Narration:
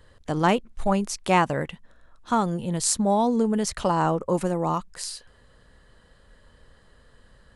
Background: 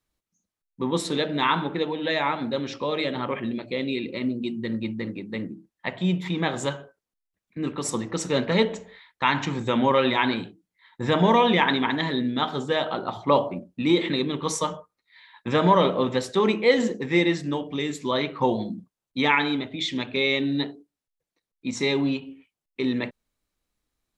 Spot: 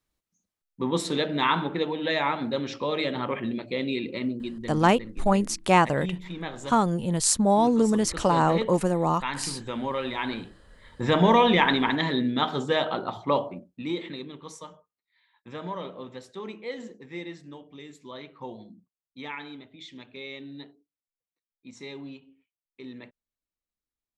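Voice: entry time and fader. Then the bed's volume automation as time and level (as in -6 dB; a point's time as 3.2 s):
4.40 s, +1.0 dB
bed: 4.15 s -1 dB
4.91 s -9.5 dB
10.08 s -9.5 dB
10.82 s 0 dB
12.89 s 0 dB
14.59 s -16.5 dB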